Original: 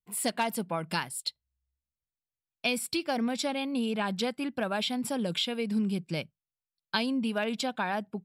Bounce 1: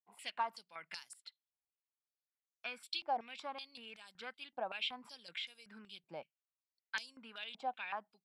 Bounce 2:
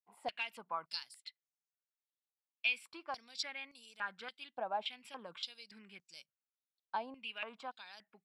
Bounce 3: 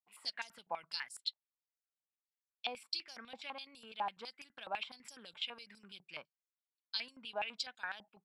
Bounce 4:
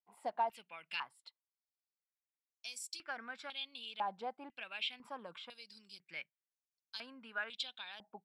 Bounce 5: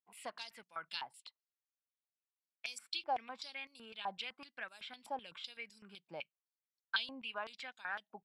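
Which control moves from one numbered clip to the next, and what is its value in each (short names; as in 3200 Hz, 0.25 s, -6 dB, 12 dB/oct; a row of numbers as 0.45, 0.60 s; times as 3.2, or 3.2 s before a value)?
stepped band-pass, rate: 5.3, 3.5, 12, 2, 7.9 Hz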